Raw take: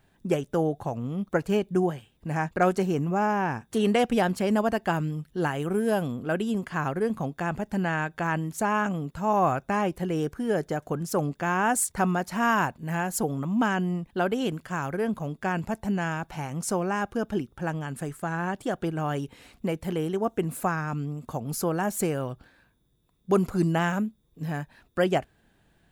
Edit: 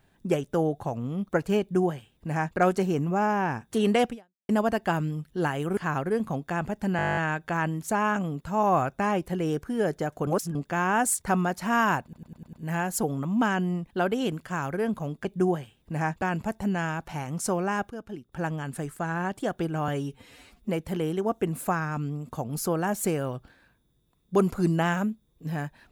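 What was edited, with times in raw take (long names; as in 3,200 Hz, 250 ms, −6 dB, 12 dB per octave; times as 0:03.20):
0:01.60–0:02.57: duplicate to 0:15.45
0:04.09–0:04.49: fade out exponential
0:05.77–0:06.67: remove
0:07.87: stutter 0.02 s, 11 plays
0:10.97–0:11.25: reverse
0:12.73: stutter 0.10 s, 6 plays
0:17.13–0:17.55: clip gain −10 dB
0:19.11–0:19.65: time-stretch 1.5×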